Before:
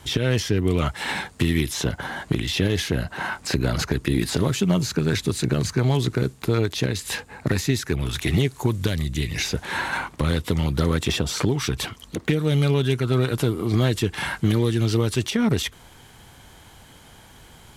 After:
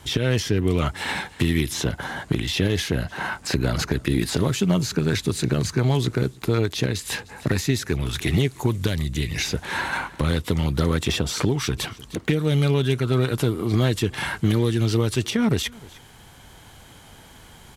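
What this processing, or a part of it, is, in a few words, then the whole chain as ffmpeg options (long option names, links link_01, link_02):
ducked delay: -filter_complex "[0:a]asplit=3[link_01][link_02][link_03];[link_02]adelay=305,volume=-5dB[link_04];[link_03]apad=whole_len=796955[link_05];[link_04][link_05]sidechaincompress=threshold=-39dB:ratio=8:attack=12:release=738[link_06];[link_01][link_06]amix=inputs=2:normalize=0"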